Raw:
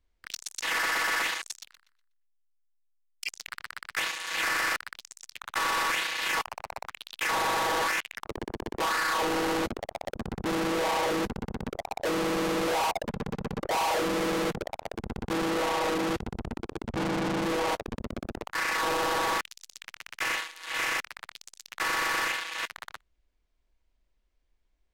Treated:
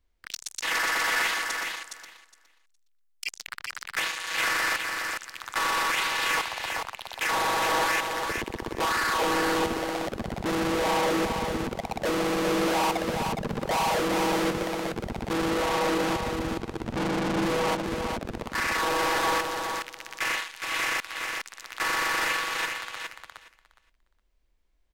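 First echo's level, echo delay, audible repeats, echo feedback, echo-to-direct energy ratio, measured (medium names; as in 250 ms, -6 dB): -5.0 dB, 414 ms, 2, 15%, -5.0 dB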